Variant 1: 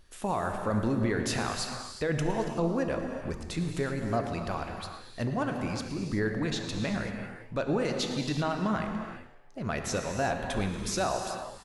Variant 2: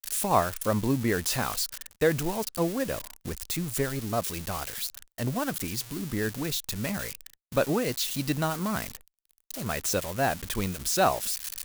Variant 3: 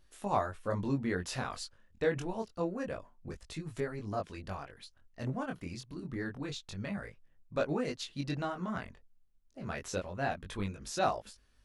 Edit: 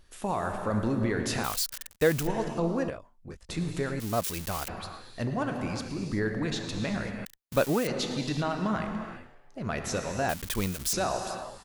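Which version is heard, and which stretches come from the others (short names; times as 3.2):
1
1.44–2.27 from 2
2.9–3.49 from 3
4–4.68 from 2
7.25–7.87 from 2
10.29–10.93 from 2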